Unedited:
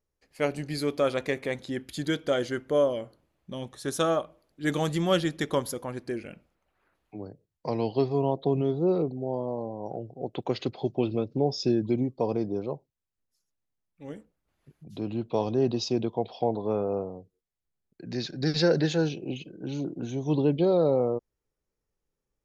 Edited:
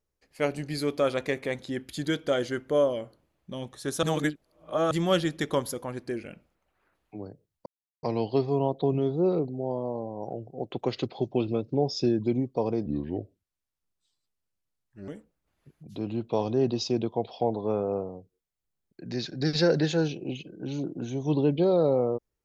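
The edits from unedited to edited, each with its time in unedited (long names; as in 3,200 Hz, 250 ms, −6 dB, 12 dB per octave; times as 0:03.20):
0:04.03–0:04.91: reverse
0:07.66: splice in silence 0.37 s
0:12.49–0:14.09: play speed 72%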